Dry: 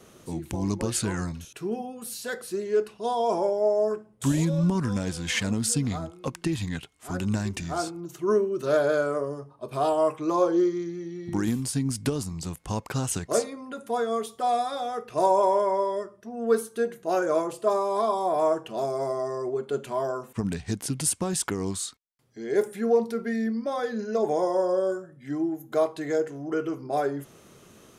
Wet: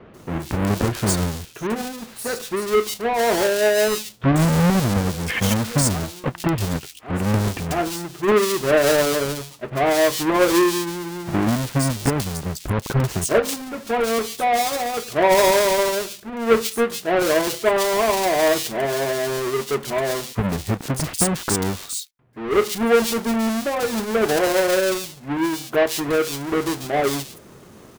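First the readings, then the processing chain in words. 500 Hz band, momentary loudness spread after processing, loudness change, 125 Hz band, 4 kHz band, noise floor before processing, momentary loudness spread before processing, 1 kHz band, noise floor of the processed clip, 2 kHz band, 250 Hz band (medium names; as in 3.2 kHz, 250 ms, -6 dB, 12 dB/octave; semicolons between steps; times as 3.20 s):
+5.5 dB, 10 LU, +6.5 dB, +7.5 dB, +11.5 dB, -54 dBFS, 10 LU, +5.0 dB, -44 dBFS, +12.5 dB, +6.0 dB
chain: square wave that keeps the level; bands offset in time lows, highs 140 ms, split 2.9 kHz; trim +2.5 dB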